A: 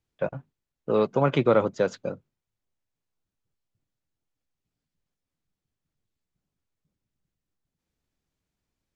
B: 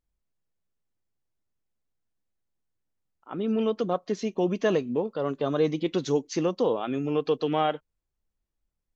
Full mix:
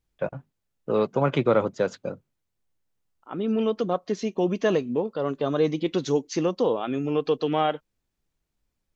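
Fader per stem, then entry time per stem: -0.5 dB, +1.5 dB; 0.00 s, 0.00 s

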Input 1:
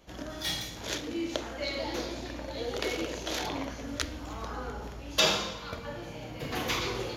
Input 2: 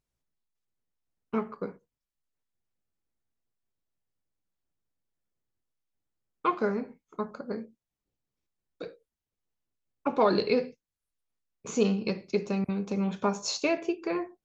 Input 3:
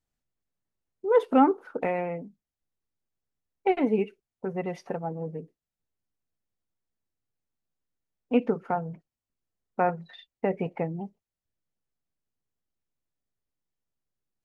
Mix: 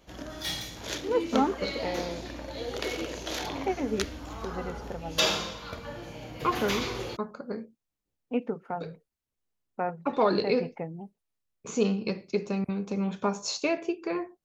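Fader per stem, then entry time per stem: -0.5 dB, -0.5 dB, -6.0 dB; 0.00 s, 0.00 s, 0.00 s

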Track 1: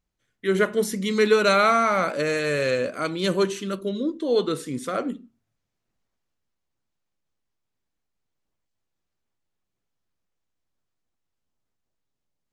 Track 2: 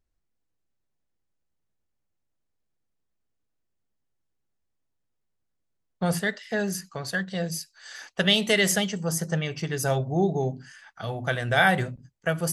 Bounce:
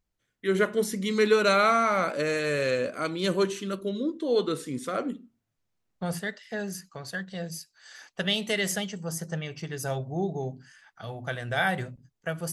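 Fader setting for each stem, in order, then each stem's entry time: -3.0 dB, -6.0 dB; 0.00 s, 0.00 s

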